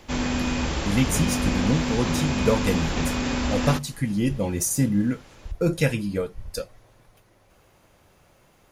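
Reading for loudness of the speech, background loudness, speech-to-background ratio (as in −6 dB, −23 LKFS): −26.0 LKFS, −26.0 LKFS, 0.0 dB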